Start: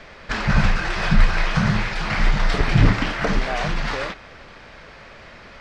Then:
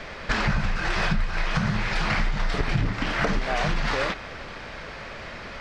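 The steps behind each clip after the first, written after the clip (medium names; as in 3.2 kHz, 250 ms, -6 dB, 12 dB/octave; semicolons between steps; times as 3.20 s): compression 12:1, threshold -25 dBFS, peak gain reduction 17 dB; trim +5 dB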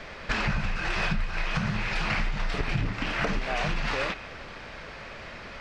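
dynamic bell 2.6 kHz, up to +6 dB, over -47 dBFS, Q 4.6; trim -4 dB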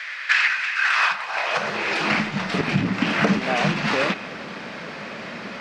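high-pass sweep 1.8 kHz -> 200 Hz, 0.72–2.29 s; trim +7 dB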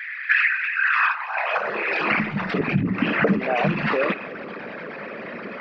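resonances exaggerated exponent 2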